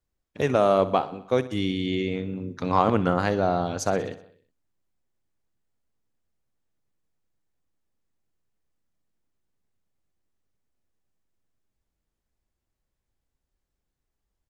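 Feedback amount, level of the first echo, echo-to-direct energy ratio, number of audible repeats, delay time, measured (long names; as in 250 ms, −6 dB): 59%, −16.5 dB, −14.5 dB, 5, 62 ms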